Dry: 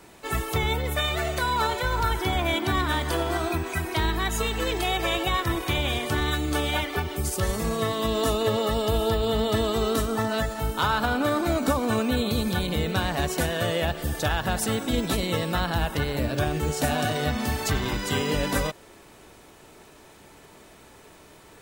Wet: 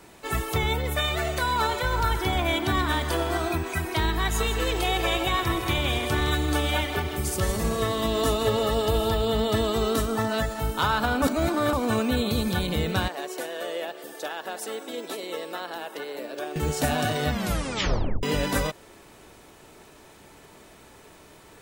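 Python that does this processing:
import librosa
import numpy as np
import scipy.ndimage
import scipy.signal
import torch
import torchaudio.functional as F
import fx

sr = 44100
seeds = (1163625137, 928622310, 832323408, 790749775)

y = fx.echo_single(x, sr, ms=126, db=-15.0, at=(1.25, 3.56))
y = fx.echo_feedback(y, sr, ms=162, feedback_pct=51, wet_db=-10.5, at=(4.16, 9.22), fade=0.02)
y = fx.ladder_highpass(y, sr, hz=310.0, resonance_pct=35, at=(13.08, 16.56))
y = fx.edit(y, sr, fx.reverse_span(start_s=11.22, length_s=0.51),
    fx.tape_stop(start_s=17.31, length_s=0.92), tone=tone)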